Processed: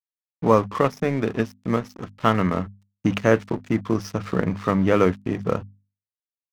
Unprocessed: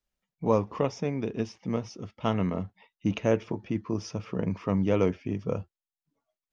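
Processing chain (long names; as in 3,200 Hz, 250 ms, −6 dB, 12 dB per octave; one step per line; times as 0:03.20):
camcorder AGC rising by 5.2 dB per second
flat-topped bell 1,500 Hz +8 dB 1 octave
dead-zone distortion −42.5 dBFS
mains-hum notches 50/100/150/200/250 Hz
level +7 dB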